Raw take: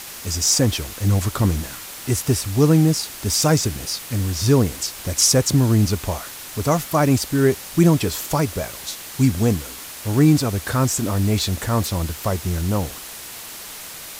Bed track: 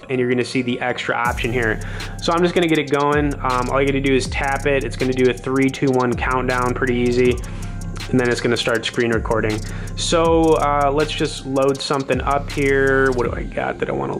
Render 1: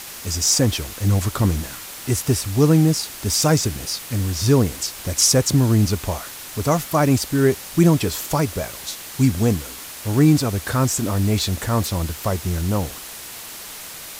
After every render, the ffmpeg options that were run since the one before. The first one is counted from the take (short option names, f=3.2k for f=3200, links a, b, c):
-af anull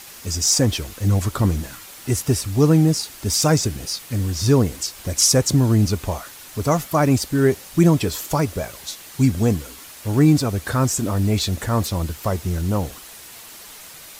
-af "afftdn=nr=6:nf=-36"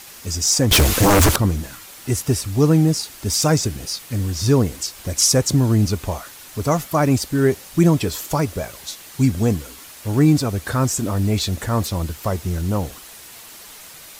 -filter_complex "[0:a]asettb=1/sr,asplit=3[a][b][c];[a]atrim=end=0.714[d];[b]atrim=start=0.71:end=1.36,asetpts=PTS-STARTPTS,afade=t=in:d=0.004:c=qsin,afade=t=out:st=0.646:d=0.004:c=qsin,aeval=exprs='0.335*sin(PI/2*5.62*val(0)/0.335)':c=same[e];[c]atrim=start=1.356[f];[d][e]acrossfade=d=0.004:c1=hsin:c2=qsin[g];[g][f]acrossfade=d=0.004:c1=qsin:c2=hsin"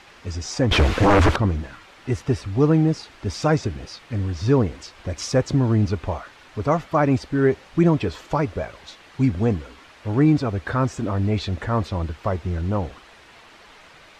-af "lowpass=2.6k,equalizer=f=160:t=o:w=1.7:g=-3.5"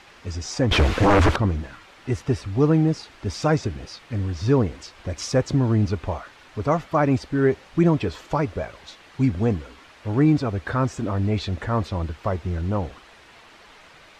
-af "volume=-1dB"